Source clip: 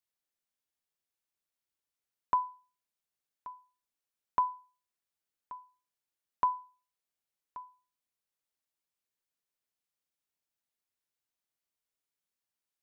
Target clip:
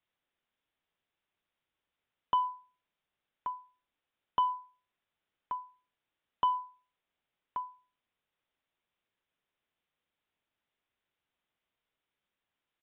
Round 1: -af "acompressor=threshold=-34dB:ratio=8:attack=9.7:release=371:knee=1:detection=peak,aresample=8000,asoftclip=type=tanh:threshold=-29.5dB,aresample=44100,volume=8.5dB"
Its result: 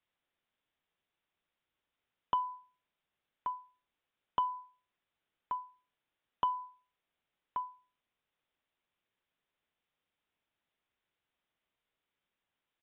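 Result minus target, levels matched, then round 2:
downward compressor: peak gain reduction +5 dB
-af "acompressor=threshold=-28dB:ratio=8:attack=9.7:release=371:knee=1:detection=peak,aresample=8000,asoftclip=type=tanh:threshold=-29.5dB,aresample=44100,volume=8.5dB"

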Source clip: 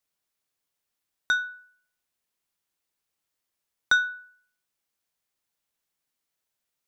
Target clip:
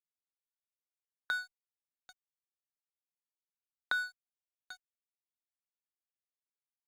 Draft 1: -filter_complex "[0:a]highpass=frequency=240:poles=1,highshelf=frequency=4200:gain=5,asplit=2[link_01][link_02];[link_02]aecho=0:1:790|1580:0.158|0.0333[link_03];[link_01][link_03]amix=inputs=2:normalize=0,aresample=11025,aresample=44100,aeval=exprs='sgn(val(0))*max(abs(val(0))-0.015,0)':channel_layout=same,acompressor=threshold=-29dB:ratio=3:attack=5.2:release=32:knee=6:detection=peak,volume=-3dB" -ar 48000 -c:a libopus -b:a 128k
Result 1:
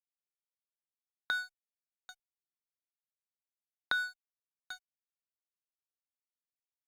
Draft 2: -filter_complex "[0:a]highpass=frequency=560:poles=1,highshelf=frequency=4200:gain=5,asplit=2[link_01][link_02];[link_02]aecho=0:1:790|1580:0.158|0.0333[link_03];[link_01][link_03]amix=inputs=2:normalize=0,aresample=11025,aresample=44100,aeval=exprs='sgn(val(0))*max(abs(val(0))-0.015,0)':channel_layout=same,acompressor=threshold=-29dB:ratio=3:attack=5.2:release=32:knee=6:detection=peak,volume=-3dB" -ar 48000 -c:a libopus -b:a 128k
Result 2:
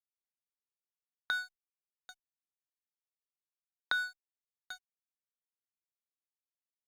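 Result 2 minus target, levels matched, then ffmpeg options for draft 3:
4,000 Hz band +3.0 dB
-filter_complex "[0:a]highpass=frequency=560:poles=1,highshelf=frequency=4200:gain=-6,asplit=2[link_01][link_02];[link_02]aecho=0:1:790|1580:0.158|0.0333[link_03];[link_01][link_03]amix=inputs=2:normalize=0,aresample=11025,aresample=44100,aeval=exprs='sgn(val(0))*max(abs(val(0))-0.015,0)':channel_layout=same,acompressor=threshold=-29dB:ratio=3:attack=5.2:release=32:knee=6:detection=peak,volume=-3dB" -ar 48000 -c:a libopus -b:a 128k

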